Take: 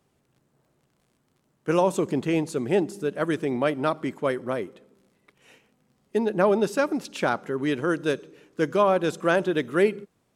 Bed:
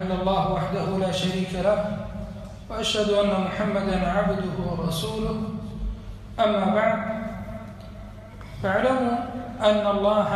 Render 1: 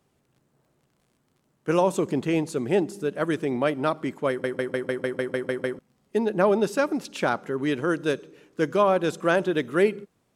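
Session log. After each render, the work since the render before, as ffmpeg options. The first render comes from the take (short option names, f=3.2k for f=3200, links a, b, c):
-filter_complex "[0:a]asplit=11[a][b][c][d][e][f][g][h][i][j][k];[a]atrim=end=4.442[l];[b]atrim=start=4.288:end=4.442[m];[c]atrim=start=4.288:end=4.442[n];[d]atrim=start=4.288:end=4.442[o];[e]atrim=start=4.288:end=4.442[p];[f]atrim=start=4.288:end=4.442[q];[g]atrim=start=4.288:end=4.442[r];[h]atrim=start=4.288:end=4.442[s];[i]atrim=start=4.288:end=4.442[t];[j]atrim=start=4.288:end=4.442[u];[k]atrim=start=5.788[v];[l][m]acrossfade=d=0.004:c1=hsin:c2=hsin[w];[w][n]acrossfade=d=0.004:c1=hsin:c2=hsin[x];[x][o]acrossfade=d=0.004:c1=hsin:c2=hsin[y];[y][p]acrossfade=d=0.004:c1=hsin:c2=hsin[z];[z][q]acrossfade=d=0.004:c1=hsin:c2=hsin[aa];[aa][r]acrossfade=d=0.004:c1=hsin:c2=hsin[ab];[ab][s]acrossfade=d=0.004:c1=hsin:c2=hsin[ac];[ac][t]acrossfade=d=0.004:c1=hsin:c2=hsin[ad];[ad][u]acrossfade=d=0.004:c1=hsin:c2=hsin[ae];[ae][v]acrossfade=d=0.004:c1=hsin:c2=hsin"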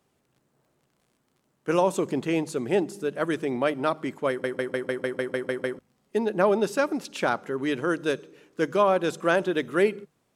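-af "lowshelf=f=260:g=-4,bandreject=f=50:t=h:w=6,bandreject=f=100:t=h:w=6,bandreject=f=150:t=h:w=6"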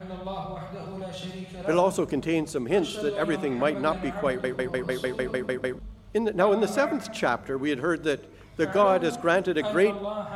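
-filter_complex "[1:a]volume=-11.5dB[a];[0:a][a]amix=inputs=2:normalize=0"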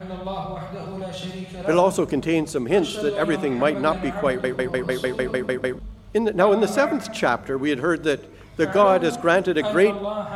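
-af "volume=4.5dB"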